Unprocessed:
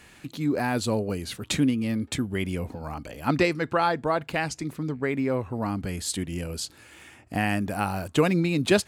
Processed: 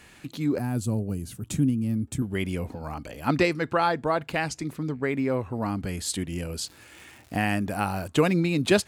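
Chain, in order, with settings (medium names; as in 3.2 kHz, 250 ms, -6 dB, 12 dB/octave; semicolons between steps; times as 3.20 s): 0.58–2.22 s: graphic EQ 125/500/1000/2000/4000 Hz +5/-8/-7/-11/-12 dB; 6.64–7.50 s: crackle 230 per s -40 dBFS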